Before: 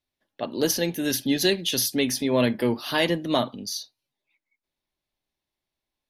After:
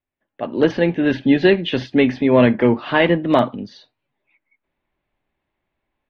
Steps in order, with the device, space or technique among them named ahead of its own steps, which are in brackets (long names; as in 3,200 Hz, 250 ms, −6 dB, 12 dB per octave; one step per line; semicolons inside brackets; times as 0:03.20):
action camera in a waterproof case (low-pass filter 2,500 Hz 24 dB per octave; automatic gain control gain up to 12 dB; AAC 48 kbit/s 48,000 Hz)